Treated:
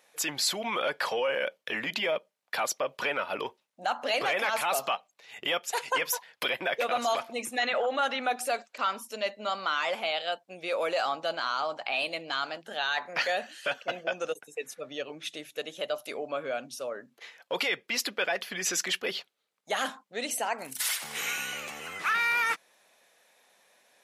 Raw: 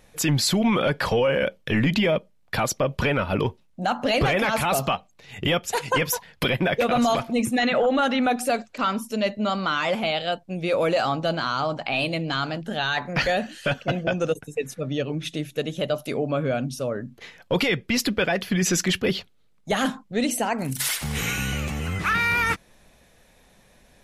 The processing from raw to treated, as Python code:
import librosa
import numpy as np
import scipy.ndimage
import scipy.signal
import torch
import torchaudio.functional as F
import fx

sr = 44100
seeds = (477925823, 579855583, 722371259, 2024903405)

y = scipy.signal.sosfilt(scipy.signal.butter(2, 570.0, 'highpass', fs=sr, output='sos'), x)
y = y * 10.0 ** (-4.0 / 20.0)